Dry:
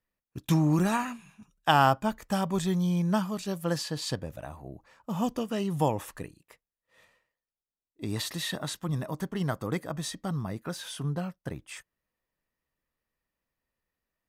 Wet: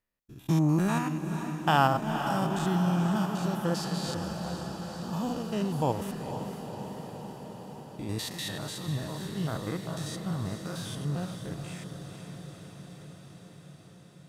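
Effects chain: spectrogram pixelated in time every 100 ms; echo that smears into a reverb 476 ms, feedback 74%, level -8 dB

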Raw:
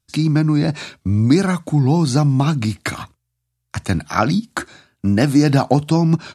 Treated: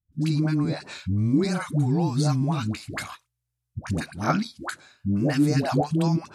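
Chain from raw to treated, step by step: phase dispersion highs, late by 126 ms, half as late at 480 Hz; trim -7.5 dB

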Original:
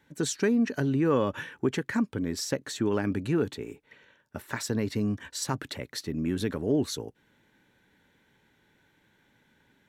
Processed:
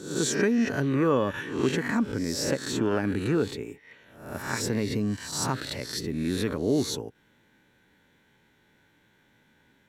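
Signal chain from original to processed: reverse spectral sustain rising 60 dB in 0.63 s

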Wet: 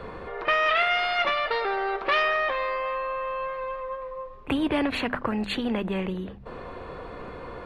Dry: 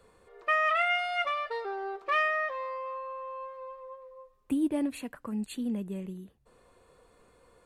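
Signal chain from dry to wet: distance through air 320 m; hum notches 50/100/150/200/250 Hz; pre-echo 32 ms -21.5 dB; spectrum-flattening compressor 2:1; trim +8 dB

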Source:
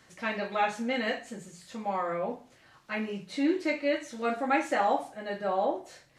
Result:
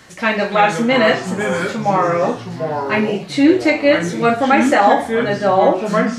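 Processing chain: ever faster or slower copies 262 ms, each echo -4 st, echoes 3, each echo -6 dB; loudness maximiser +16 dB; trim -1 dB

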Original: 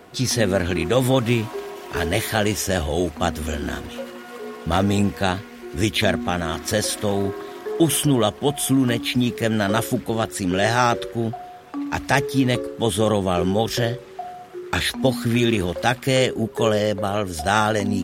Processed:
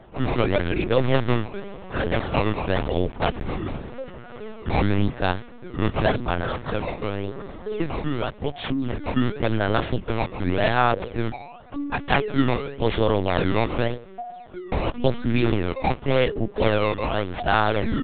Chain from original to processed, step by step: 6.58–9.05 s: compression 5:1, threshold -21 dBFS, peak gain reduction 9 dB; decimation with a swept rate 16×, swing 160% 0.9 Hz; LPC vocoder at 8 kHz pitch kept; tape noise reduction on one side only decoder only; trim -1 dB

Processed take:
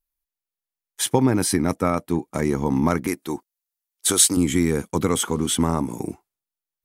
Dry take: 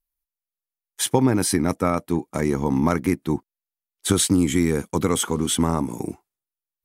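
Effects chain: 3.07–4.37 s: tone controls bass -13 dB, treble +7 dB

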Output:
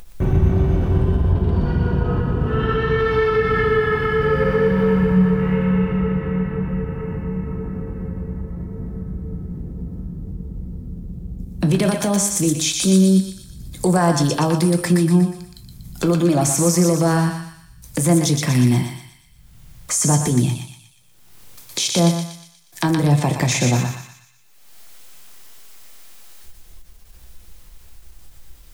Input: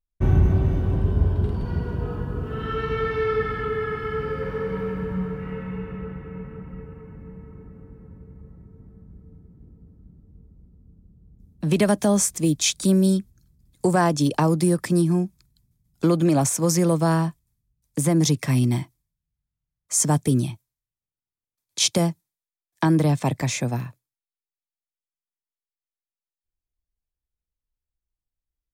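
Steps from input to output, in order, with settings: 1.30–2.99 s: treble shelf 6.6 kHz -11.5 dB; in parallel at -1 dB: compression, threshold -34 dBFS, peak gain reduction 20 dB; on the sum: peak limiter -17 dBFS, peak gain reduction 10.5 dB; upward compressor, threshold -28 dBFS; thinning echo 120 ms, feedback 51%, high-pass 1.2 kHz, level -3.5 dB; on a send at -7 dB: reverberation RT60 0.35 s, pre-delay 6 ms; on the sum: endings held to a fixed fall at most 320 dB/s; trim +6 dB

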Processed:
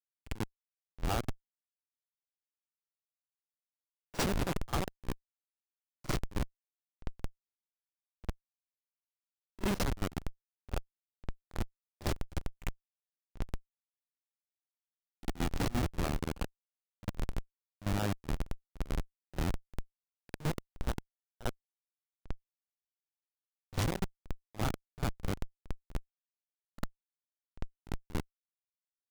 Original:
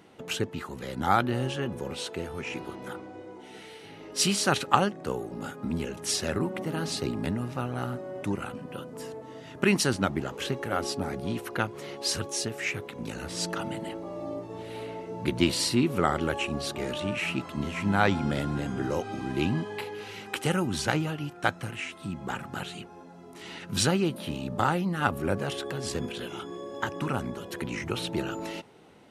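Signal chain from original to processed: Schmitt trigger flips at -20.5 dBFS; expander -60 dBFS; pre-echo 49 ms -18 dB; trim +1 dB

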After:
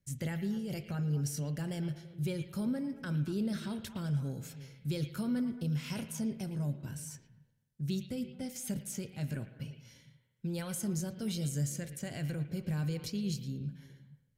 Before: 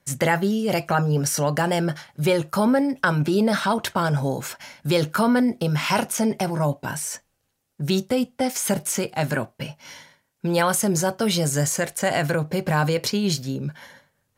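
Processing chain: amplifier tone stack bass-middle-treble 10-0-1; on a send: repeats whose band climbs or falls 113 ms, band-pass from 2.7 kHz, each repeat -1.4 oct, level -8 dB; on the sum: spring tank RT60 1.2 s, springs 49 ms, chirp 70 ms, DRR 13 dB; trim +4.5 dB

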